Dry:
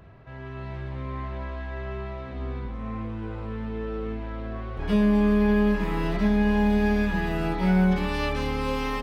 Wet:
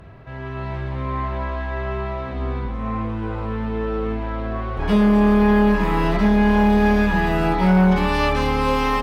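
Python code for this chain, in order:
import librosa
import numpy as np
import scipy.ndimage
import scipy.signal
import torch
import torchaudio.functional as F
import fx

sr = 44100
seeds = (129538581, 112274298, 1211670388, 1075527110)

y = fx.fold_sine(x, sr, drive_db=3, ceiling_db=-11.0)
y = fx.dynamic_eq(y, sr, hz=960.0, q=1.2, threshold_db=-39.0, ratio=4.0, max_db=5)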